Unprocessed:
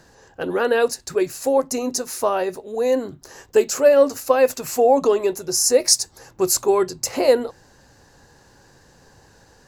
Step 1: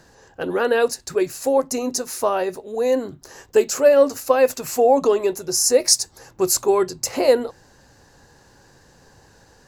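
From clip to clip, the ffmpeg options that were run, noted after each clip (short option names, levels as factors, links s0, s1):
-af anull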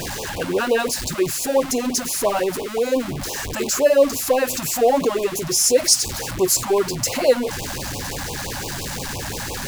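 -af "aeval=exprs='val(0)+0.5*0.0891*sgn(val(0))':c=same,afftfilt=real='re*(1-between(b*sr/1024,360*pow(1700/360,0.5+0.5*sin(2*PI*5.8*pts/sr))/1.41,360*pow(1700/360,0.5+0.5*sin(2*PI*5.8*pts/sr))*1.41))':imag='im*(1-between(b*sr/1024,360*pow(1700/360,0.5+0.5*sin(2*PI*5.8*pts/sr))/1.41,360*pow(1700/360,0.5+0.5*sin(2*PI*5.8*pts/sr))*1.41))':win_size=1024:overlap=0.75,volume=0.891"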